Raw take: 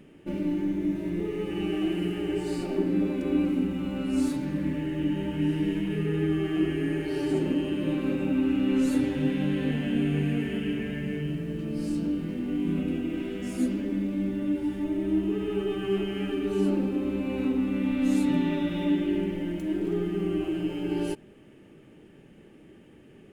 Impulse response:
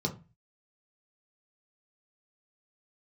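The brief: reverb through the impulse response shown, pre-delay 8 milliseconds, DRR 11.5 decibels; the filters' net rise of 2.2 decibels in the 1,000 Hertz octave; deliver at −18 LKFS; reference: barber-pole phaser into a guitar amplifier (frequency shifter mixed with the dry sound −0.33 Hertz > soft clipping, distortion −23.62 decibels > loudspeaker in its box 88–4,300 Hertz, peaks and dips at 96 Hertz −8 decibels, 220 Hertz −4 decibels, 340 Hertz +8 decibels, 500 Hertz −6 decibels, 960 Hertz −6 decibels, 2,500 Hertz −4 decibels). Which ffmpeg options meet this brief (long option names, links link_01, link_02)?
-filter_complex "[0:a]equalizer=frequency=1000:width_type=o:gain=6.5,asplit=2[link_01][link_02];[1:a]atrim=start_sample=2205,adelay=8[link_03];[link_02][link_03]afir=irnorm=-1:irlink=0,volume=-16.5dB[link_04];[link_01][link_04]amix=inputs=2:normalize=0,asplit=2[link_05][link_06];[link_06]afreqshift=-0.33[link_07];[link_05][link_07]amix=inputs=2:normalize=1,asoftclip=threshold=-16dB,highpass=88,equalizer=frequency=96:width_type=q:width=4:gain=-8,equalizer=frequency=220:width_type=q:width=4:gain=-4,equalizer=frequency=340:width_type=q:width=4:gain=8,equalizer=frequency=500:width_type=q:width=4:gain=-6,equalizer=frequency=960:width_type=q:width=4:gain=-6,equalizer=frequency=2500:width_type=q:width=4:gain=-4,lowpass=frequency=4300:width=0.5412,lowpass=frequency=4300:width=1.3066,volume=10.5dB"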